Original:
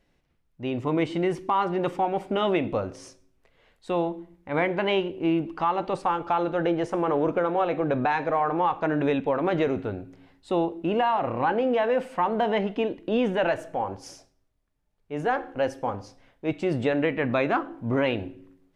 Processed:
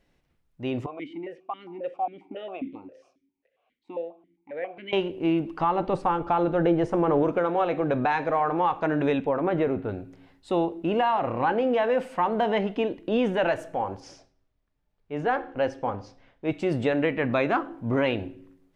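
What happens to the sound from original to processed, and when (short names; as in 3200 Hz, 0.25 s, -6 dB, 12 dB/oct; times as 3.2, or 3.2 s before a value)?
0.86–4.93 vowel sequencer 7.4 Hz
5.61–7.23 tilt -2 dB/oct
9.26–9.89 bell 5900 Hz -15 dB 1.8 oct
14–16.51 LPF 4800 Hz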